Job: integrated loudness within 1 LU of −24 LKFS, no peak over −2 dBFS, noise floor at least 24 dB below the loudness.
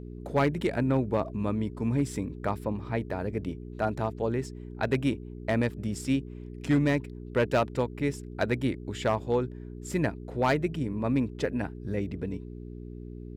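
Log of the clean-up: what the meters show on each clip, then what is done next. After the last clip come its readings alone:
share of clipped samples 0.4%; peaks flattened at −17.5 dBFS; mains hum 60 Hz; hum harmonics up to 420 Hz; level of the hum −38 dBFS; integrated loudness −30.0 LKFS; sample peak −17.5 dBFS; target loudness −24.0 LKFS
→ clipped peaks rebuilt −17.5 dBFS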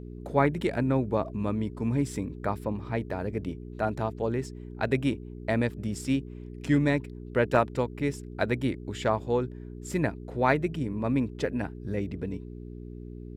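share of clipped samples 0.0%; mains hum 60 Hz; hum harmonics up to 420 Hz; level of the hum −38 dBFS
→ hum removal 60 Hz, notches 7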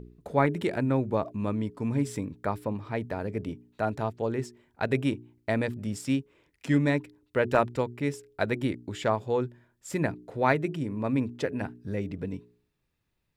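mains hum none found; integrated loudness −30.0 LKFS; sample peak −9.0 dBFS; target loudness −24.0 LKFS
→ level +6 dB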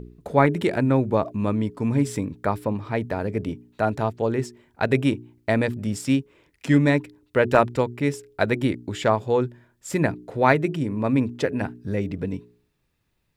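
integrated loudness −24.0 LKFS; sample peak −3.0 dBFS; background noise floor −71 dBFS

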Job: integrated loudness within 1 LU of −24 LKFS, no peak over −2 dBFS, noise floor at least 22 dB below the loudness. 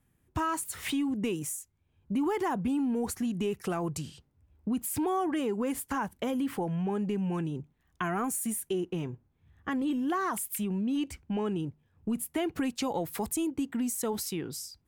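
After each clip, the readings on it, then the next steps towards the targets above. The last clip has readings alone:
integrated loudness −32.0 LKFS; sample peak −18.5 dBFS; target loudness −24.0 LKFS
→ level +8 dB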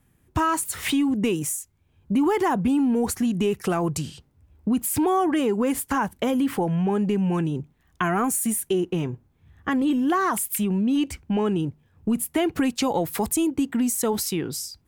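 integrated loudness −24.0 LKFS; sample peak −10.5 dBFS; background noise floor −64 dBFS

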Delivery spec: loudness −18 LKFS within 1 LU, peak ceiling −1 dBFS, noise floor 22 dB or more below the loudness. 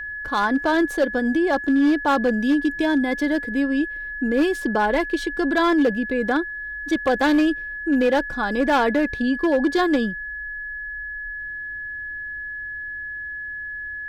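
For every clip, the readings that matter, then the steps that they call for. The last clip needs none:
share of clipped samples 1.2%; peaks flattened at −13.0 dBFS; interfering tone 1,700 Hz; level of the tone −29 dBFS; integrated loudness −22.0 LKFS; sample peak −13.0 dBFS; target loudness −18.0 LKFS
→ clipped peaks rebuilt −13 dBFS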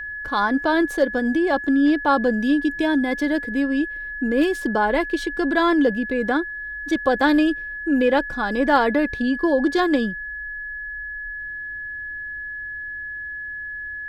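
share of clipped samples 0.0%; interfering tone 1,700 Hz; level of the tone −29 dBFS
→ notch filter 1,700 Hz, Q 30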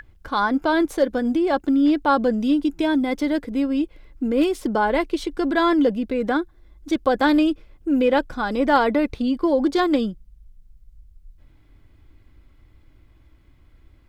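interfering tone none found; integrated loudness −21.0 LKFS; sample peak −5.0 dBFS; target loudness −18.0 LKFS
→ level +3 dB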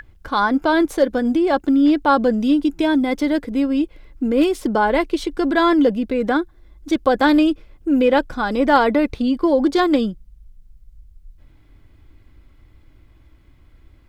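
integrated loudness −18.0 LKFS; sample peak −2.0 dBFS; background noise floor −51 dBFS

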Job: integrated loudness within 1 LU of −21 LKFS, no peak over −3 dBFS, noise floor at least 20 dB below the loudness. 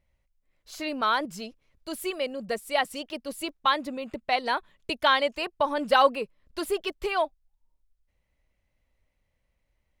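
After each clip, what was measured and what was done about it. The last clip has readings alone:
number of dropouts 1; longest dropout 1.1 ms; integrated loudness −27.5 LKFS; sample peak −8.0 dBFS; target loudness −21.0 LKFS
→ repair the gap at 0:03.49, 1.1 ms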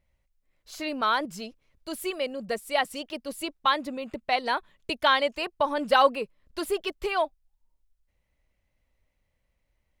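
number of dropouts 0; integrated loudness −27.5 LKFS; sample peak −8.0 dBFS; target loudness −21.0 LKFS
→ level +6.5 dB
brickwall limiter −3 dBFS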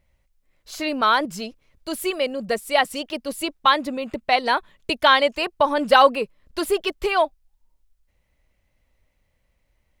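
integrated loudness −21.5 LKFS; sample peak −3.0 dBFS; background noise floor −69 dBFS

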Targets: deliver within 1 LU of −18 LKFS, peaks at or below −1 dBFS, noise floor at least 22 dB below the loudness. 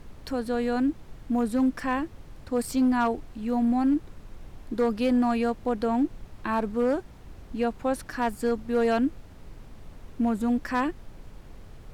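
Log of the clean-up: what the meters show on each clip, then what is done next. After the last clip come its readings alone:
share of clipped samples 0.8%; peaks flattened at −17.5 dBFS; background noise floor −47 dBFS; target noise floor −49 dBFS; integrated loudness −27.0 LKFS; sample peak −17.5 dBFS; target loudness −18.0 LKFS
→ clipped peaks rebuilt −17.5 dBFS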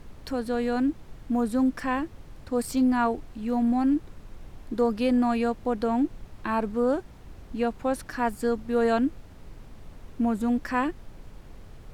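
share of clipped samples 0.0%; background noise floor −47 dBFS; target noise floor −49 dBFS
→ noise reduction from a noise print 6 dB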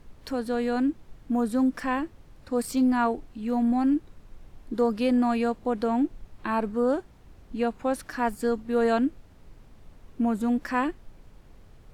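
background noise floor −53 dBFS; integrated loudness −27.0 LKFS; sample peak −13.5 dBFS; target loudness −18.0 LKFS
→ level +9 dB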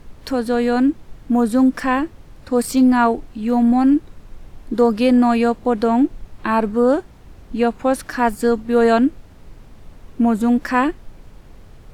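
integrated loudness −18.0 LKFS; sample peak −4.5 dBFS; background noise floor −44 dBFS

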